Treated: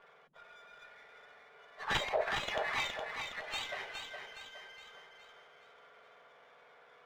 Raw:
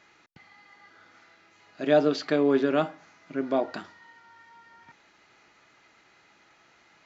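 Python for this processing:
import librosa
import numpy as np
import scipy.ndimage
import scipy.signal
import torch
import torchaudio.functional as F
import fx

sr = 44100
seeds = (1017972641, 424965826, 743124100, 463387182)

p1 = fx.octave_mirror(x, sr, pivot_hz=1700.0)
p2 = fx.transient(p1, sr, attack_db=3, sustain_db=7)
p3 = (np.mod(10.0 ** (16.5 / 20.0) * p2 + 1.0, 2.0) - 1.0) / 10.0 ** (16.5 / 20.0)
p4 = scipy.signal.sosfilt(scipy.signal.butter(12, 3800.0, 'lowpass', fs=sr, output='sos'), p3)
p5 = p4 + fx.echo_feedback(p4, sr, ms=415, feedback_pct=46, wet_db=-6.0, dry=0)
y = fx.running_max(p5, sr, window=3)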